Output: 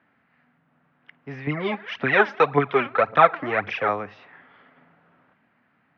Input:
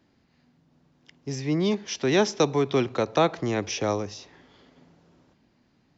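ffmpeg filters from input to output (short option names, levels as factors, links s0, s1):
-filter_complex "[0:a]equalizer=f=1700:t=o:w=1.5:g=11,asettb=1/sr,asplit=3[s0][s1][s2];[s0]atrim=end=1.474[s3];[s1]atrim=start=1.47:end=3.89,asetpts=PTS-STARTPTS,afade=t=in:d=0.004:c=qsin,afade=t=out:st=2.416:d=0.004:c=qsin,aphaser=in_gain=1:out_gain=1:delay=3.8:decay=0.69:speed=1.8:type=triangular[s4];[s2]atrim=start=3.886[s5];[s3][s4]acrossfade=d=0.004:c1=hsin:c2=qsin[s6];[s6][s5]acrossfade=d=0.004:c1=qsin:c2=hsin,highpass=130,equalizer=f=350:t=q:w=4:g=-7,equalizer=f=710:t=q:w=4:g=4,equalizer=f=1300:t=q:w=4:g=5,lowpass=f=2800:w=0.5412,lowpass=f=2800:w=1.3066,volume=0.75"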